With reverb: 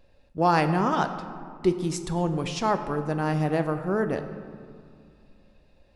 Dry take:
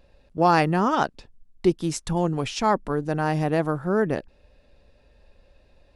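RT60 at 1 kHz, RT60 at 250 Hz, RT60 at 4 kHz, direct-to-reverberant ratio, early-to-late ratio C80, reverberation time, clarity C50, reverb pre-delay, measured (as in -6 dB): 2.4 s, 2.8 s, 1.1 s, 8.0 dB, 11.0 dB, 2.3 s, 10.0 dB, 6 ms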